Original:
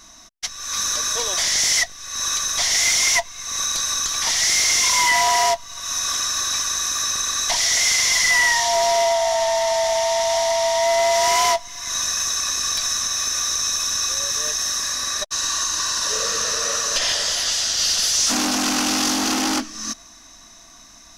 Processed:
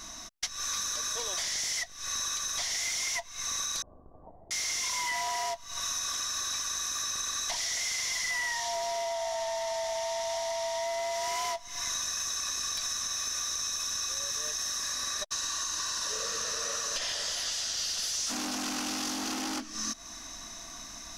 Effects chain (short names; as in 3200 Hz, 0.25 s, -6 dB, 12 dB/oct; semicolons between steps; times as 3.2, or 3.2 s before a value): compressor 8:1, threshold -33 dBFS, peak gain reduction 17.5 dB; 3.82–4.51 steep low-pass 740 Hz 36 dB/oct; gain +2 dB